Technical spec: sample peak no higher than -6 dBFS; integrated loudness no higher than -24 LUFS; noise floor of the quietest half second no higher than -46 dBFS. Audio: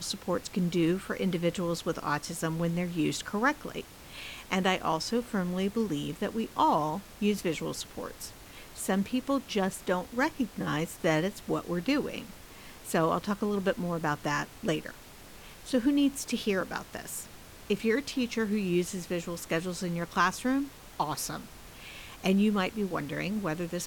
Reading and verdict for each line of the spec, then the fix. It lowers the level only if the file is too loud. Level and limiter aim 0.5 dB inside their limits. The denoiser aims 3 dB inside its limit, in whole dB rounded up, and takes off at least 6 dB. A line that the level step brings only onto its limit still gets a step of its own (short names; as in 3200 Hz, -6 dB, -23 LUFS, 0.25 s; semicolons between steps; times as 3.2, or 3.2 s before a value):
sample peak -13.5 dBFS: OK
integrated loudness -30.5 LUFS: OK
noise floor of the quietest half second -49 dBFS: OK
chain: none